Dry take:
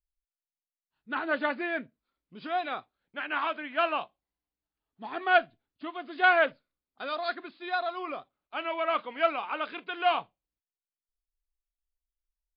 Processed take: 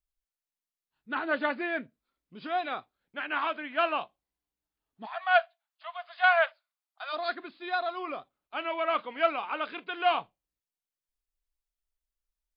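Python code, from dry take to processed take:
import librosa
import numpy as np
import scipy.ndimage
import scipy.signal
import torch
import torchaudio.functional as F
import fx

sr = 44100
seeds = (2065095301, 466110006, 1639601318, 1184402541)

y = fx.cheby1_highpass(x, sr, hz=650.0, order=5, at=(5.05, 7.12), fade=0.02)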